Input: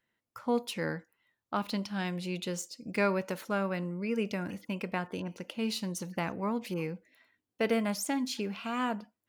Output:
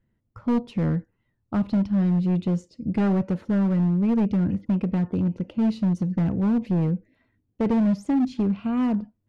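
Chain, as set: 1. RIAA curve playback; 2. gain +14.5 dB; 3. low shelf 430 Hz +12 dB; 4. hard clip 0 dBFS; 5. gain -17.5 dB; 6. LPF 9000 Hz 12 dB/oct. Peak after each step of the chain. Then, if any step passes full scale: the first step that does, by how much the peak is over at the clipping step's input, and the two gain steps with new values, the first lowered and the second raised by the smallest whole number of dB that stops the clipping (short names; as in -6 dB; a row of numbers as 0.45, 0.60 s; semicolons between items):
-12.0, +2.5, +9.0, 0.0, -17.5, -17.5 dBFS; step 2, 9.0 dB; step 2 +5.5 dB, step 5 -8.5 dB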